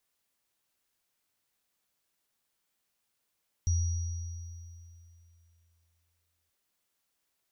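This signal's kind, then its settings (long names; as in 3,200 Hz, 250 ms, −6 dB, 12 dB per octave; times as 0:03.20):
inharmonic partials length 2.83 s, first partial 83.6 Hz, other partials 5,770 Hz, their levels −12 dB, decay 2.83 s, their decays 2.48 s, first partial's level −23 dB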